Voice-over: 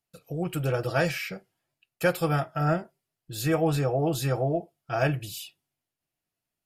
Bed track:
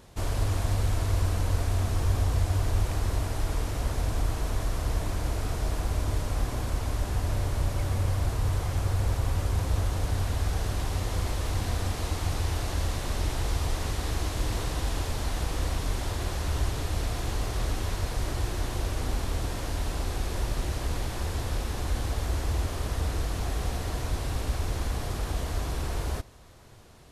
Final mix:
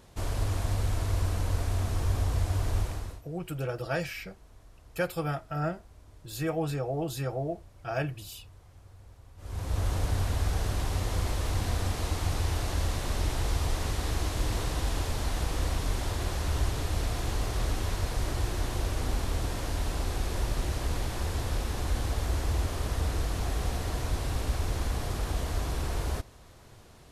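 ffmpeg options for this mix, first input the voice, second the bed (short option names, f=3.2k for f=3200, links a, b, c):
-filter_complex "[0:a]adelay=2950,volume=-6dB[a];[1:a]volume=22.5dB,afade=t=out:st=2.78:d=0.44:silence=0.0707946,afade=t=in:st=9.37:d=0.53:silence=0.0562341[b];[a][b]amix=inputs=2:normalize=0"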